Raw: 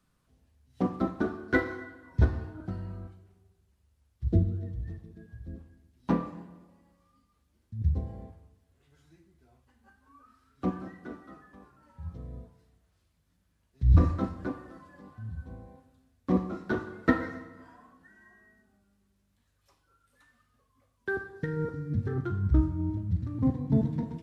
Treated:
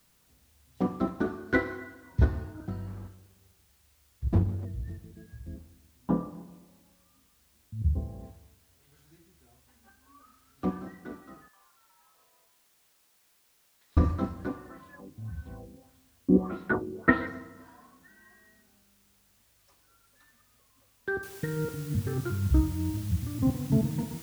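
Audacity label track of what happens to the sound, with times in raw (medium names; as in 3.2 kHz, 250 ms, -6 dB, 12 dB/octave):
2.870000	4.650000	comb filter that takes the minimum delay 0.63 ms
5.570000	8.230000	boxcar filter over 20 samples
11.480000	13.970000	ladder high-pass 780 Hz, resonance 30%
14.690000	17.270000	LFO low-pass sine 1.7 Hz 310–3800 Hz
21.230000	21.230000	noise floor step -67 dB -49 dB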